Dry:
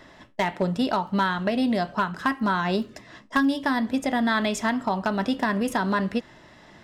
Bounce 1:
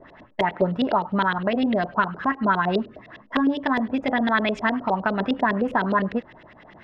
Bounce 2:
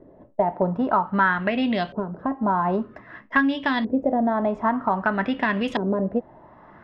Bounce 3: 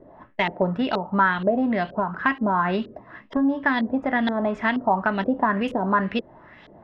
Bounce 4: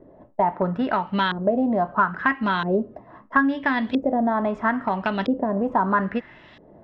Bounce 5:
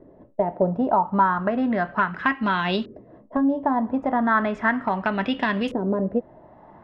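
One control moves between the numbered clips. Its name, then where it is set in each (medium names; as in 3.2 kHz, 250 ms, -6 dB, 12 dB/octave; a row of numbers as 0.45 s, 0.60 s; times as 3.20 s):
LFO low-pass, rate: 9.8 Hz, 0.52 Hz, 2.1 Hz, 0.76 Hz, 0.35 Hz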